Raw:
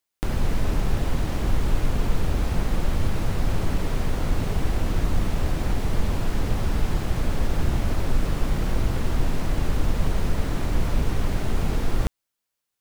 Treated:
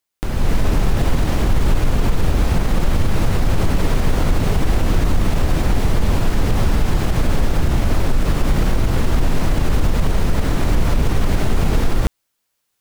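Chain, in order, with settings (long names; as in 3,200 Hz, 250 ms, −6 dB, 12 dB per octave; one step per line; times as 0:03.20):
automatic gain control gain up to 9.5 dB
brickwall limiter −9 dBFS, peak gain reduction 6.5 dB
level +2 dB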